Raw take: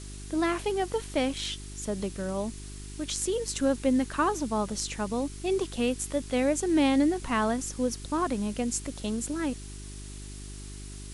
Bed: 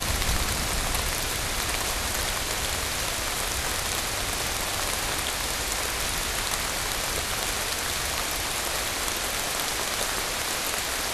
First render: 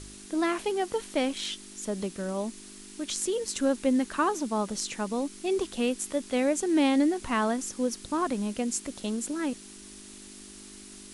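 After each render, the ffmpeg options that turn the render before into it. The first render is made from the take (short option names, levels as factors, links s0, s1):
-af "bandreject=f=50:t=h:w=4,bandreject=f=100:t=h:w=4,bandreject=f=150:t=h:w=4"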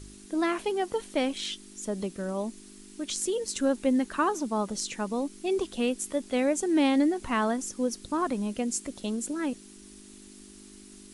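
-af "afftdn=nr=6:nf=-47"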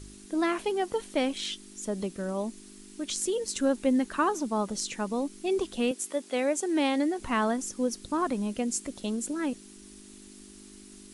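-filter_complex "[0:a]asettb=1/sr,asplit=3[s0][s1][s2];[s0]atrim=end=5.914[s3];[s1]atrim=start=5.91:end=7.19,asetpts=PTS-STARTPTS,afade=t=in:d=0.004:c=qsin,afade=t=out:st=1.276:d=0.004:c=qsin,highpass=320[s4];[s2]atrim=start=7.186[s5];[s3][s4]acrossfade=d=0.004:c1=hsin:c2=qsin[s6];[s6][s5]acrossfade=d=0.004:c1=qsin:c2=hsin"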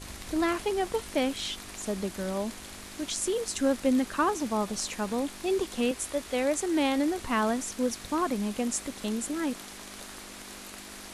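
-filter_complex "[1:a]volume=0.141[s0];[0:a][s0]amix=inputs=2:normalize=0"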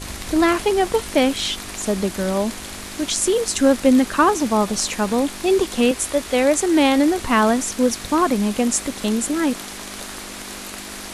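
-af "volume=3.35"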